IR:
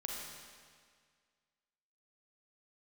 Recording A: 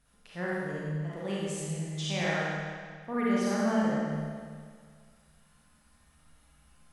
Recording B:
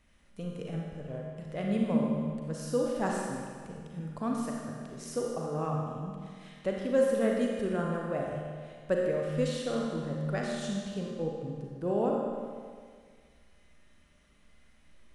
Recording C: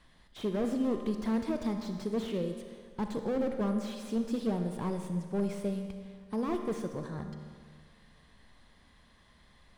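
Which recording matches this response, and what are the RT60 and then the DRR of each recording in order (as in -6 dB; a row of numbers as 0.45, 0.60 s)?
B; 1.9, 1.9, 1.9 s; -8.0, -1.5, 5.5 dB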